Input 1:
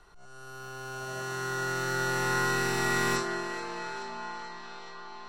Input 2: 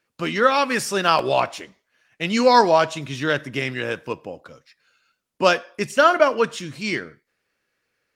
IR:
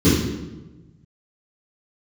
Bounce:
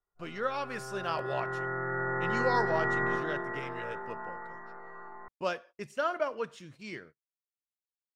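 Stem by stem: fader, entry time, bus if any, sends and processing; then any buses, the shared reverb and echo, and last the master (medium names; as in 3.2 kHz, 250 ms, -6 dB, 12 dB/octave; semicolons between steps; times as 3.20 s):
+0.5 dB, 0.00 s, no send, rippled Chebyshev low-pass 2 kHz, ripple 3 dB; band-stop 1.5 kHz, Q 8.9
-14.0 dB, 0.00 s, no send, treble shelf 2 kHz -6.5 dB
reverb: none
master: gate -51 dBFS, range -30 dB; peaking EQ 260 Hz -4.5 dB 0.64 oct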